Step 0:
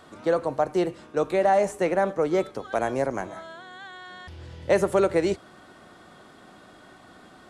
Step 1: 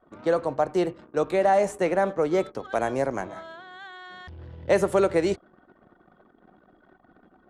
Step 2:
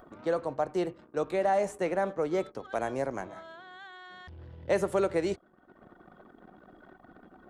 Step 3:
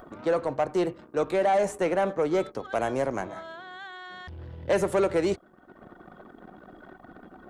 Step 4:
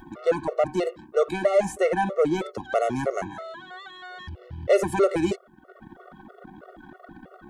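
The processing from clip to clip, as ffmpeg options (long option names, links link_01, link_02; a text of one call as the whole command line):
ffmpeg -i in.wav -af "anlmdn=0.0398" out.wav
ffmpeg -i in.wav -af "acompressor=mode=upward:threshold=-37dB:ratio=2.5,volume=-6dB" out.wav
ffmpeg -i in.wav -af "asoftclip=type=tanh:threshold=-22.5dB,volume=6dB" out.wav
ffmpeg -i in.wav -af "afftfilt=real='re*gt(sin(2*PI*3.1*pts/sr)*(1-2*mod(floor(b*sr/1024/370),2)),0)':imag='im*gt(sin(2*PI*3.1*pts/sr)*(1-2*mod(floor(b*sr/1024/370),2)),0)':win_size=1024:overlap=0.75,volume=5.5dB" out.wav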